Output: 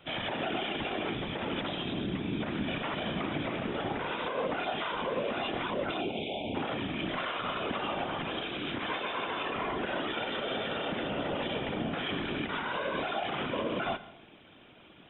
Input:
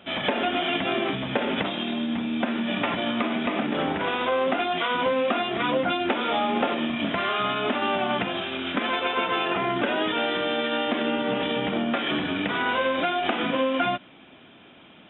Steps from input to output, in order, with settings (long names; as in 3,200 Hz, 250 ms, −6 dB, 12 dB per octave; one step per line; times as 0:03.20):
brickwall limiter −19.5 dBFS, peak gain reduction 10 dB
0:06.01–0:06.55: linear-phase brick-wall band-stop 810–2,200 Hz
random phases in short frames
on a send: convolution reverb RT60 0.55 s, pre-delay 114 ms, DRR 17 dB
on the sum: level −5.5 dB